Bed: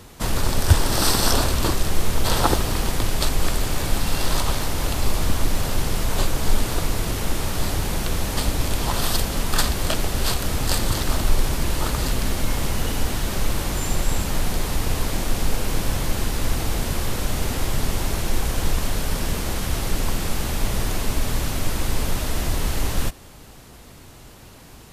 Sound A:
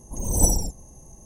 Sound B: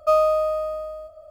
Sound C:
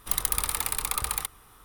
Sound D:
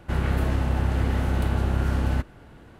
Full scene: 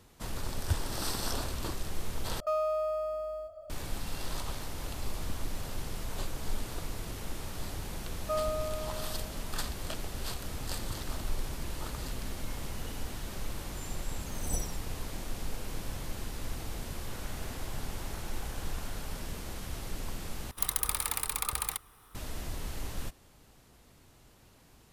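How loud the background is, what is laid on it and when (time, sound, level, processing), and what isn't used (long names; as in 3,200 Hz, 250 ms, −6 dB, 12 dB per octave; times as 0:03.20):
bed −15 dB
0:02.40: overwrite with B −3 dB + downward compressor 2 to 1, threshold −31 dBFS
0:08.22: mix in B −14.5 dB
0:14.10: mix in A −16 dB
0:17.00: mix in D −16.5 dB + Butterworth high-pass 630 Hz
0:20.51: overwrite with C −4 dB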